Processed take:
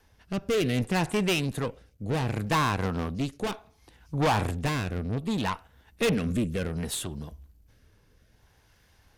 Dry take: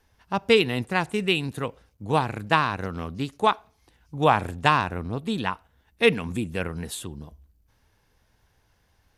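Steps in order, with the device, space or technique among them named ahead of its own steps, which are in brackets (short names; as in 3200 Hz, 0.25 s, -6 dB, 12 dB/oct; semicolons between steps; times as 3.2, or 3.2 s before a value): overdriven rotary cabinet (tube stage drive 28 dB, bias 0.4; rotary speaker horn 0.65 Hz); gain +7.5 dB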